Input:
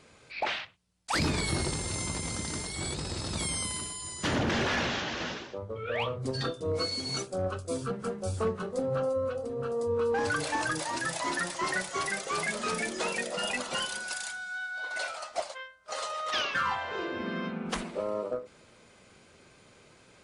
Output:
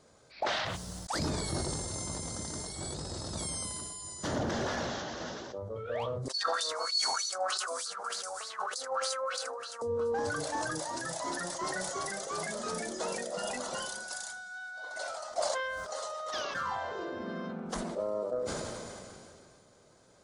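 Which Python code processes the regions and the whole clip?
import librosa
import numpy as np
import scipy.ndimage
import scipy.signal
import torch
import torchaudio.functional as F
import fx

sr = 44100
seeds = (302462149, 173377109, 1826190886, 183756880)

y = fx.chain(x, sr, fx.peak_eq(hz=3300.0, db=-8.0, octaves=0.87),
    fx.echo_tape(ms=80, feedback_pct=33, wet_db=-5.0, lp_hz=5600.0, drive_db=27.0, wow_cents=19),
    fx.filter_lfo_highpass(shape='sine', hz=3.3, low_hz=820.0, high_hz=4400.0, q=6.3), at=(6.28, 9.82))
y = fx.graphic_eq_15(y, sr, hz=(630, 2500, 6300), db=(5, -12, 4))
y = fx.sustainer(y, sr, db_per_s=23.0)
y = y * 10.0 ** (-5.0 / 20.0)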